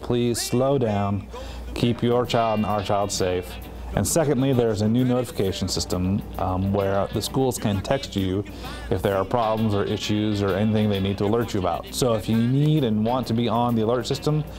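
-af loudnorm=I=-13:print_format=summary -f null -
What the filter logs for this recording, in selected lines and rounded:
Input Integrated:    -23.0 LUFS
Input True Peak:      -3.8 dBTP
Input LRA:             2.0 LU
Input Threshold:     -33.1 LUFS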